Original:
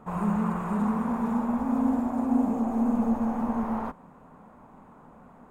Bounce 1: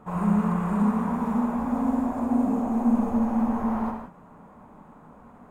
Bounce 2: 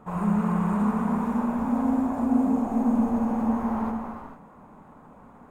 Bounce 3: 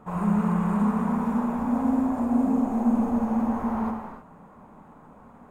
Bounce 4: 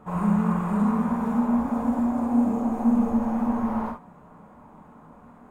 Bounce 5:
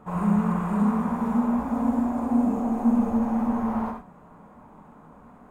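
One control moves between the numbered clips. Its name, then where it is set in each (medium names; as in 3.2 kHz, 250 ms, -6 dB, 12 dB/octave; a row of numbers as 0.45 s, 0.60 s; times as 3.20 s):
gated-style reverb, gate: 200 ms, 490 ms, 330 ms, 90 ms, 130 ms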